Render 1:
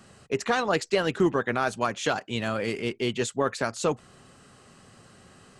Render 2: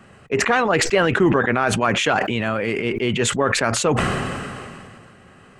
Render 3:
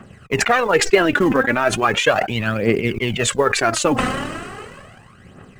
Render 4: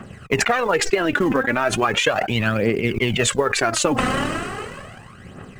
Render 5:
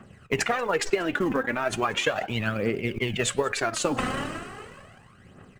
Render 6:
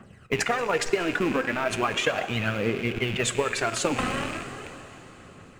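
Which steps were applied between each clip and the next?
resonant high shelf 3300 Hz -8.5 dB, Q 1.5; sustainer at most 25 dB/s; gain +5 dB
transient shaper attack +4 dB, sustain -10 dB; in parallel at -12 dB: short-mantissa float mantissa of 2-bit; on the sum: phaser 0.37 Hz, delay 4 ms, feedback 61%; gain -2 dB
compressor 10:1, threshold -19 dBFS, peak gain reduction 12 dB; gain +4 dB
echo 0.186 s -23.5 dB; flange 1.7 Hz, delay 7.7 ms, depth 5.9 ms, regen -87%; upward expander 1.5:1, over -32 dBFS
rattling part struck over -41 dBFS, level -25 dBFS; plate-style reverb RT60 4.8 s, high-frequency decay 0.95×, DRR 11 dB

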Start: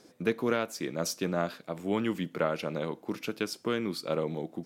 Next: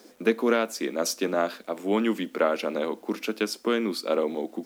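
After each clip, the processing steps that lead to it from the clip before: elliptic high-pass 210 Hz, stop band 40 dB; bit-crush 11-bit; gain +6 dB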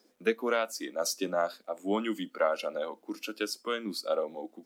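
spectral noise reduction 12 dB; gain -3 dB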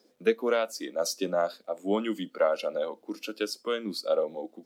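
ten-band EQ 125 Hz +11 dB, 500 Hz +6 dB, 4000 Hz +4 dB; gain -2 dB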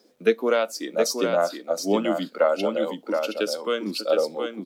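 echo 0.72 s -5.5 dB; gain +4.5 dB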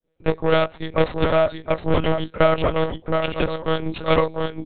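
opening faded in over 0.53 s; added harmonics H 8 -18 dB, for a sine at -7.5 dBFS; monotone LPC vocoder at 8 kHz 160 Hz; gain +3.5 dB

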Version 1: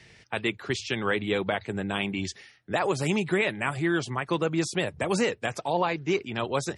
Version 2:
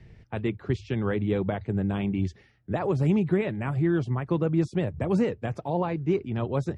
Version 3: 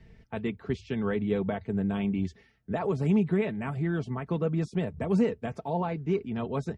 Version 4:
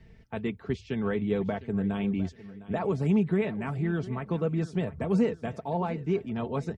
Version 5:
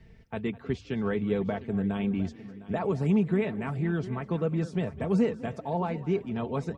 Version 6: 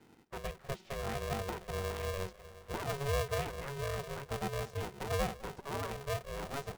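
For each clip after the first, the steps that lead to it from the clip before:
tilt -4.5 dB/oct; gain -5.5 dB
comb 4.5 ms, depth 49%; gain -3 dB
feedback echo 0.707 s, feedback 32%, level -17 dB
frequency-shifting echo 0.204 s, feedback 32%, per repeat +31 Hz, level -19.5 dB
polarity switched at an audio rate 280 Hz; gain -9 dB

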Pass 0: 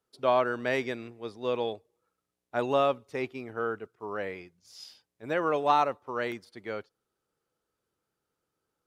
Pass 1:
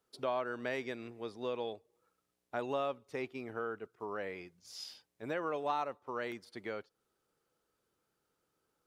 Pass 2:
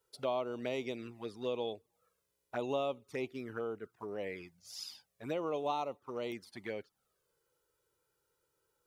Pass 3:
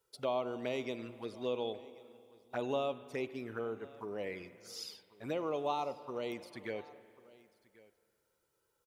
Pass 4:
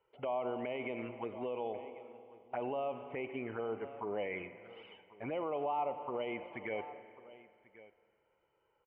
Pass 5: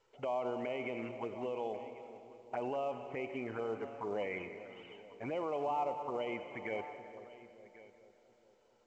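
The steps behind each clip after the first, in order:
bell 91 Hz -3 dB 1.4 oct; compressor 2:1, threshold -44 dBFS, peak gain reduction 13.5 dB; gain +2 dB
high shelf 8400 Hz +7.5 dB; envelope flanger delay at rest 2.1 ms, full sweep at -34.5 dBFS; gain +2.5 dB
echo 1.09 s -22 dB; spring tank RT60 2.4 s, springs 44/48 ms, chirp 55 ms, DRR 13.5 dB
limiter -33.5 dBFS, peak gain reduction 11 dB; rippled Chebyshev low-pass 3100 Hz, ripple 9 dB; gain +10 dB
split-band echo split 720 Hz, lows 0.433 s, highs 0.19 s, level -13.5 dB; µ-law 128 kbps 16000 Hz

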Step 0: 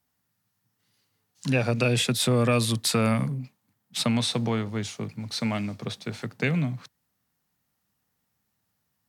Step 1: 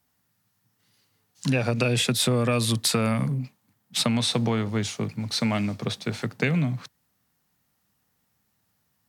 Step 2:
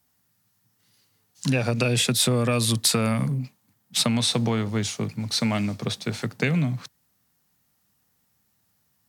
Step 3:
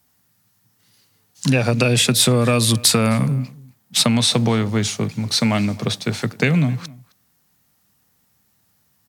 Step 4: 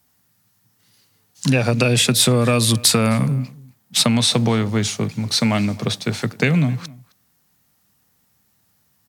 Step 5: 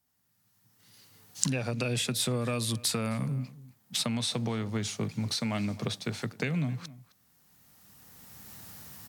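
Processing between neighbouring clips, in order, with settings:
compressor 5:1, threshold -24 dBFS, peak gain reduction 6 dB; gain +4.5 dB
tone controls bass +1 dB, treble +4 dB
outdoor echo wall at 45 m, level -22 dB; gain +6 dB
nothing audible
recorder AGC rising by 15 dB/s; gain -14.5 dB

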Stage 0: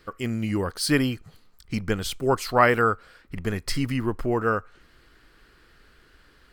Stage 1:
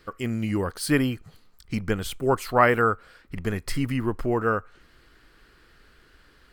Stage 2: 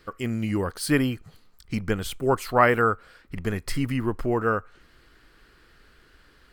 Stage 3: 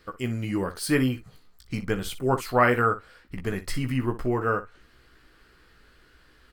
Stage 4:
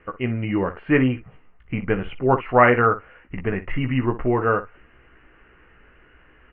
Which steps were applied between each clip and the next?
dynamic EQ 5000 Hz, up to -7 dB, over -46 dBFS, Q 1.2
nothing audible
early reflections 16 ms -6.5 dB, 61 ms -14 dB; gain -2 dB
rippled Chebyshev low-pass 2900 Hz, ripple 3 dB; gain +7 dB

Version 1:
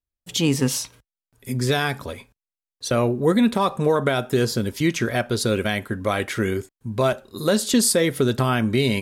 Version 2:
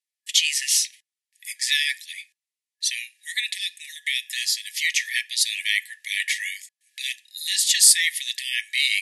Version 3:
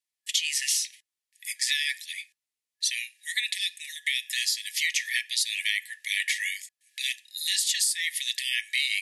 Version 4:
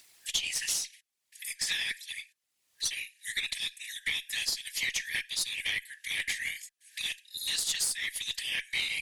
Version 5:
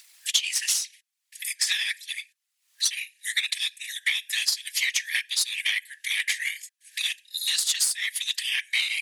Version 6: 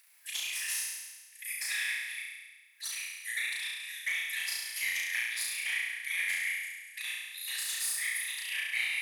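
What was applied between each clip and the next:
FFT band-pass 1700–12000 Hz; gain +7 dB
compressor 16:1, threshold -22 dBFS, peak gain reduction 13.5 dB
whisperiser; added harmonics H 4 -22 dB, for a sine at -10.5 dBFS; upward compressor, threshold -29 dBFS; gain -5 dB
HPF 1200 Hz 12 dB/oct; transient shaper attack +3 dB, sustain -4 dB; gain +5.5 dB
band shelf 5000 Hz -10 dB; hard clip -19 dBFS, distortion -23 dB; on a send: flutter echo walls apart 5.9 m, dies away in 1.3 s; on the sum: gain -7.5 dB

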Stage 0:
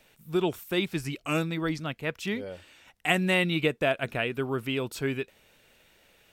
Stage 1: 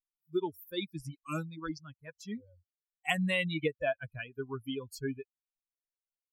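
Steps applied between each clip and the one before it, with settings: per-bin expansion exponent 3; gain -1.5 dB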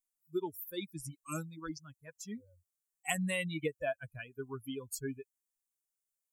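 resonant high shelf 5600 Hz +10.5 dB, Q 1.5; gain -3.5 dB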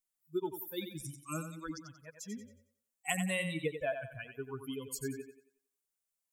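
thinning echo 91 ms, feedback 37%, high-pass 170 Hz, level -8 dB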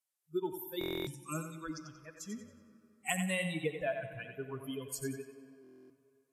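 on a send at -12.5 dB: reverb RT60 3.1 s, pre-delay 29 ms; on the sum: stuck buffer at 0.79/5.62, samples 1024, times 11; Vorbis 64 kbps 32000 Hz

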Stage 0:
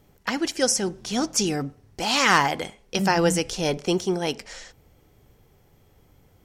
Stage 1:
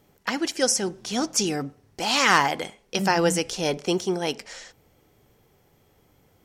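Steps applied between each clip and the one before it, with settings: low shelf 95 Hz -11.5 dB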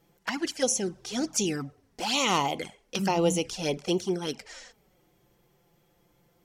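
envelope flanger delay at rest 6 ms, full sweep at -19.5 dBFS; gain -1.5 dB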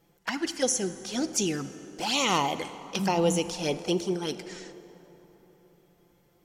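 plate-style reverb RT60 3.9 s, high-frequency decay 0.5×, DRR 12 dB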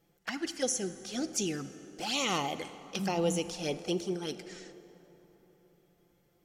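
notch 960 Hz, Q 5.7; gain -5 dB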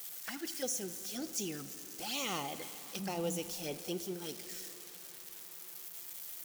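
switching spikes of -29 dBFS; gain -7 dB

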